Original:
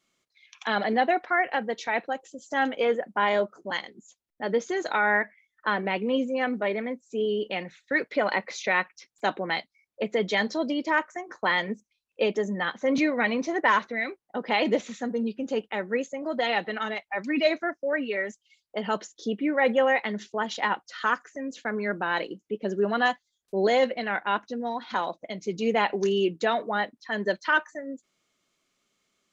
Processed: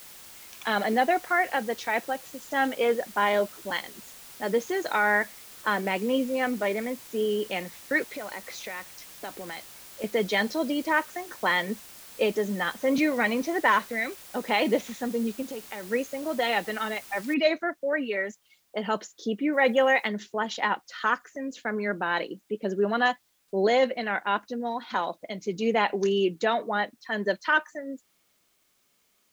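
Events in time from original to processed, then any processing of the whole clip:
0:08.04–0:10.04: downward compressor 3 to 1, threshold −37 dBFS
0:15.42–0:15.89: downward compressor, threshold −33 dBFS
0:17.34: noise floor change −47 dB −70 dB
0:19.52–0:20.07: high-shelf EQ 4,700 Hz → 3,400 Hz +10 dB

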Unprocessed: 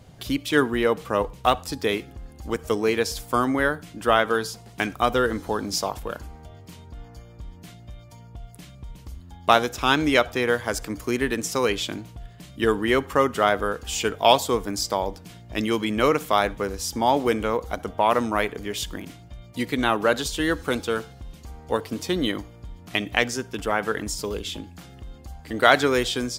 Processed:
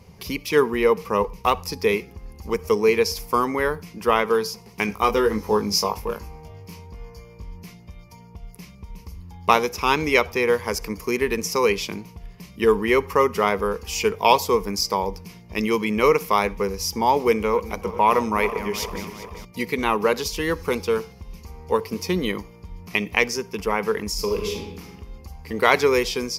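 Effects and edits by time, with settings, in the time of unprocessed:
0:04.86–0:07.54: double-tracking delay 19 ms −4 dB
0:17.32–0:19.45: feedback delay that plays each chunk backwards 198 ms, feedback 70%, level −12.5 dB
0:24.11–0:24.92: thrown reverb, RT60 0.95 s, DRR 2.5 dB
whole clip: EQ curve with evenly spaced ripples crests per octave 0.83, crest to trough 11 dB

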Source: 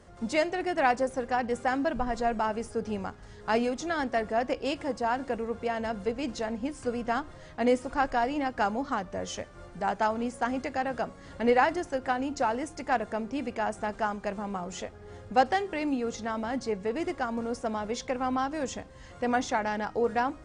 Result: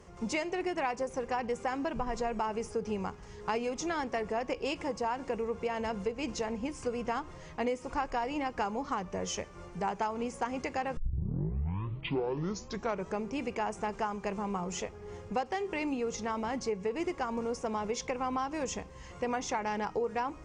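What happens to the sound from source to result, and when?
0:10.97: tape start 2.29 s
whole clip: EQ curve with evenly spaced ripples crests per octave 0.77, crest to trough 7 dB; downward compressor, threshold −29 dBFS

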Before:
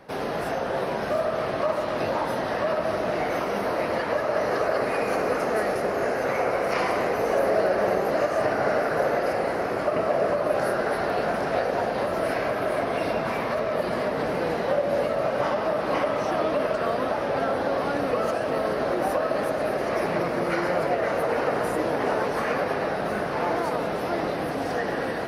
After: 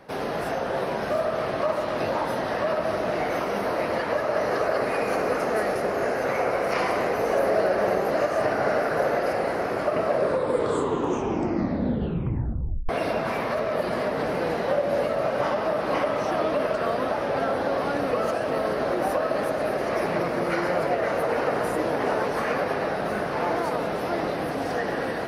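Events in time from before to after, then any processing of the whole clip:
0:10.06: tape stop 2.83 s

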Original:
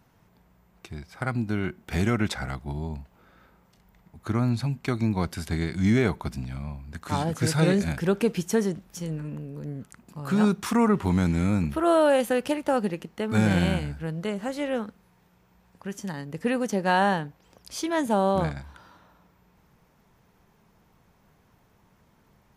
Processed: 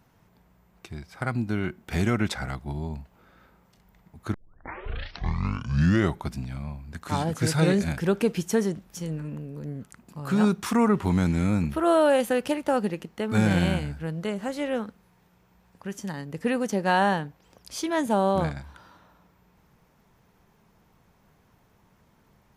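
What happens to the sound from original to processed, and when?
0:04.34: tape start 1.92 s

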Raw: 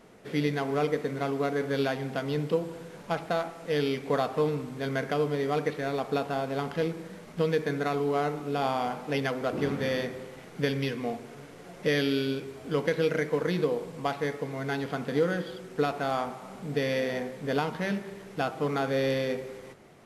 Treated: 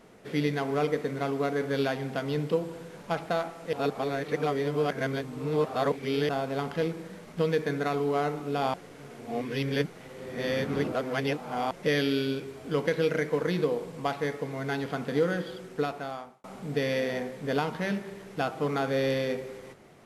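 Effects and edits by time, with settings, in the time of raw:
0:03.73–0:06.29: reverse
0:08.74–0:11.71: reverse
0:15.64–0:16.44: fade out

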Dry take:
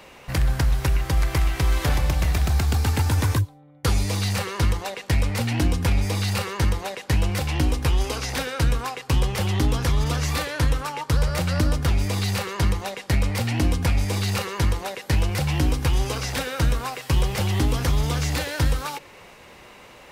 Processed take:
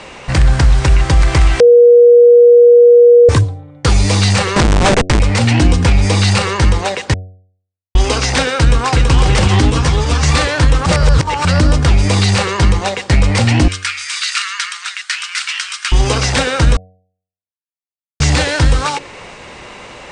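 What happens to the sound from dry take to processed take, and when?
0:01.60–0:03.29: beep over 479 Hz −10.5 dBFS
0:04.56–0:05.20: comparator with hysteresis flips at −31 dBFS
0:07.14–0:07.95: silence
0:08.59–0:09.14: delay throw 330 ms, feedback 70%, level −4 dB
0:09.70–0:10.23: string-ensemble chorus
0:10.86–0:11.45: reverse
0:13.68–0:15.92: elliptic high-pass filter 1,300 Hz, stop band 60 dB
0:16.77–0:18.20: silence
whole clip: Butterworth low-pass 9,200 Hz 72 dB per octave; hum removal 92.95 Hz, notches 8; boost into a limiter +14 dB; level −1 dB

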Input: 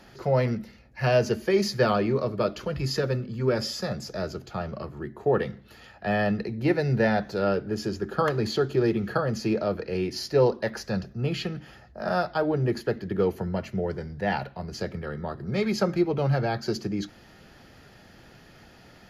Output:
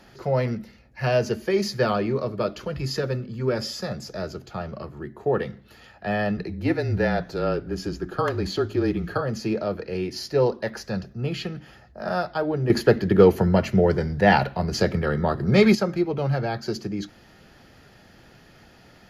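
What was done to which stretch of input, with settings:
0:06.37–0:09.21: frequency shifter −27 Hz
0:12.70–0:15.75: clip gain +10 dB

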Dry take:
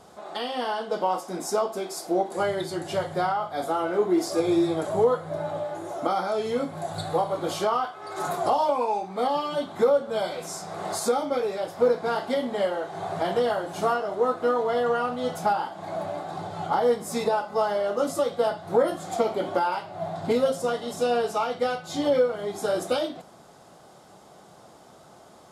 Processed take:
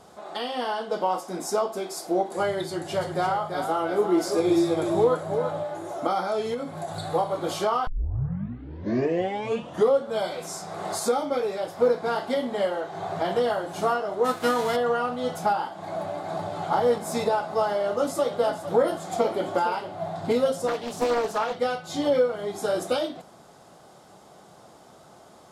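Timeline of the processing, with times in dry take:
0:02.67–0:05.63: single-tap delay 338 ms −7 dB
0:06.54–0:07.11: downward compressor, threshold −27 dBFS
0:07.87: tape start 2.15 s
0:12.81–0:13.31: parametric band 9,600 Hz −6 dB 0.49 octaves
0:14.24–0:14.75: spectral envelope flattened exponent 0.6
0:15.85–0:16.60: delay throw 380 ms, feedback 80%, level −3.5 dB
0:17.74–0:19.95: single-tap delay 458 ms −12 dB
0:20.67–0:21.56: highs frequency-modulated by the lows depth 0.51 ms

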